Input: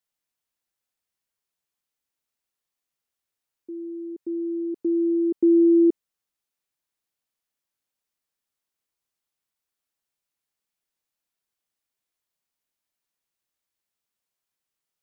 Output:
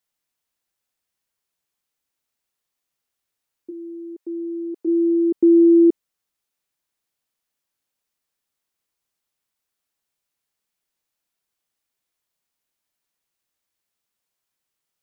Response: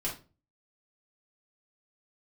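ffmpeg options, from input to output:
-filter_complex "[0:a]asplit=3[link_01][link_02][link_03];[link_01]afade=type=out:start_time=3.7:duration=0.02[link_04];[link_02]highpass=380,afade=type=in:start_time=3.7:duration=0.02,afade=type=out:start_time=4.86:duration=0.02[link_05];[link_03]afade=type=in:start_time=4.86:duration=0.02[link_06];[link_04][link_05][link_06]amix=inputs=3:normalize=0,volume=4dB"

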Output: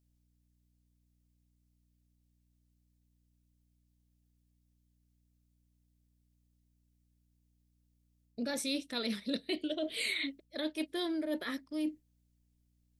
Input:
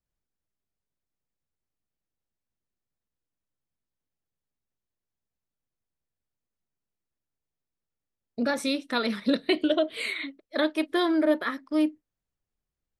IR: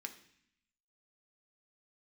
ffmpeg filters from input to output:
-af "areverse,acompressor=threshold=-32dB:ratio=6,areverse,equalizer=frequency=1200:width_type=o:width=1.2:gain=-10,aeval=exprs='val(0)+0.000251*(sin(2*PI*60*n/s)+sin(2*PI*2*60*n/s)/2+sin(2*PI*3*60*n/s)/3+sin(2*PI*4*60*n/s)/4+sin(2*PI*5*60*n/s)/5)':channel_layout=same,highshelf=frequency=2800:gain=7.5"

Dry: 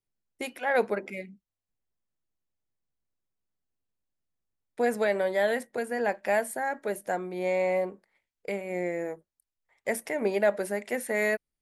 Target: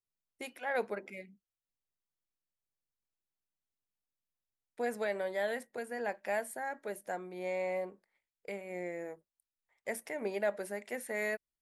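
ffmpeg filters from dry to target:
ffmpeg -i in.wav -af "lowshelf=frequency=470:gain=-3,volume=-7.5dB" out.wav

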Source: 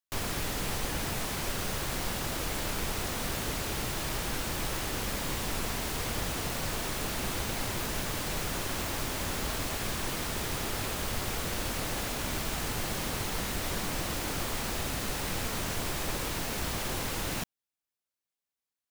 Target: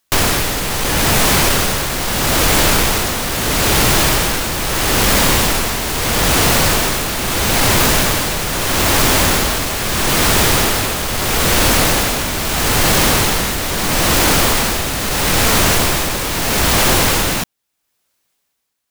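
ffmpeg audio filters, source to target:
ffmpeg -i in.wav -af "apsyclip=30.5dB,tremolo=f=0.77:d=0.58,volume=-7.5dB" out.wav

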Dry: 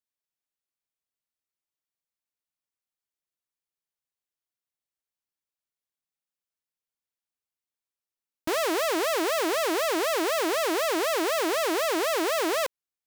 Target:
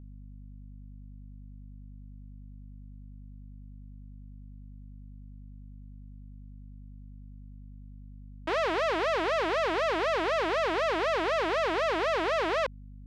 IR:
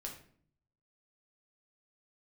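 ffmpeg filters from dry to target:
-af "acrusher=bits=5:mode=log:mix=0:aa=0.000001,highpass=430,lowpass=2800,aeval=exprs='val(0)+0.00562*(sin(2*PI*50*n/s)+sin(2*PI*2*50*n/s)/2+sin(2*PI*3*50*n/s)/3+sin(2*PI*4*50*n/s)/4+sin(2*PI*5*50*n/s)/5)':channel_layout=same"

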